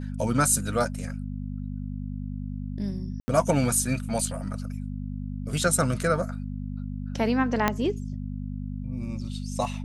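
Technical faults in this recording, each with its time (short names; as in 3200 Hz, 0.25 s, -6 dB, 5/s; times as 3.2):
hum 50 Hz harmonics 5 -33 dBFS
3.2–3.28 gap 80 ms
7.68 pop -7 dBFS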